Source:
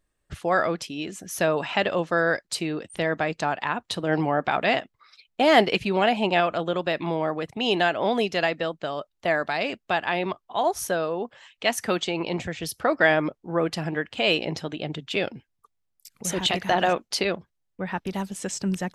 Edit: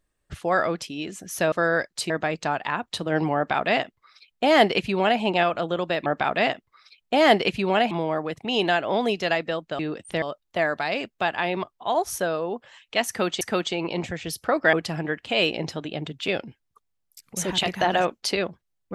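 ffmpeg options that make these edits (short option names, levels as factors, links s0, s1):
-filter_complex "[0:a]asplit=9[s0][s1][s2][s3][s4][s5][s6][s7][s8];[s0]atrim=end=1.522[s9];[s1]atrim=start=2.058:end=2.642[s10];[s2]atrim=start=3.068:end=7.032[s11];[s3]atrim=start=4.328:end=6.182[s12];[s4]atrim=start=7.028:end=8.912[s13];[s5]atrim=start=2.638:end=3.072[s14];[s6]atrim=start=8.908:end=12.102[s15];[s7]atrim=start=11.768:end=13.092[s16];[s8]atrim=start=13.608[s17];[s9][s10]acrossfade=d=0.004:c1=hsin:c2=hsin[s18];[s18][s11]acrossfade=d=0.004:c1=hsin:c2=hsin[s19];[s19][s12]acrossfade=d=0.004:c1=hsin:c2=hsin[s20];[s20][s13]acrossfade=d=0.004:c1=hsin:c2=hsin[s21];[s21][s14]acrossfade=d=0.004:c1=hsin:c2=hsin[s22];[s22][s15]acrossfade=d=0.004:c1=hsin:c2=hsin[s23];[s23][s16]acrossfade=d=0.004:c1=hsin:c2=hsin[s24];[s24][s17]acrossfade=d=0.004:c1=hsin:c2=hsin"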